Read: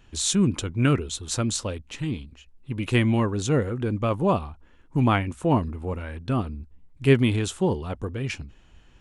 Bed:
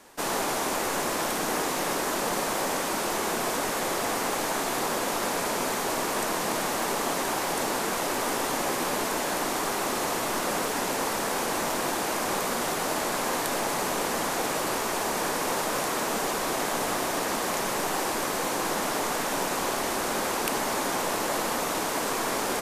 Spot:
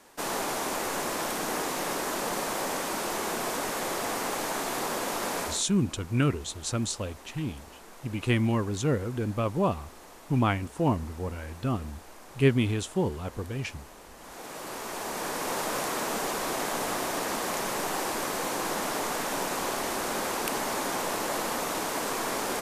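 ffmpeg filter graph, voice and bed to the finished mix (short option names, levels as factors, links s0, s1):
-filter_complex "[0:a]adelay=5350,volume=0.631[s0];[1:a]volume=6.31,afade=t=out:st=5.42:d=0.22:silence=0.11885,afade=t=in:st=14.17:d=1.49:silence=0.112202[s1];[s0][s1]amix=inputs=2:normalize=0"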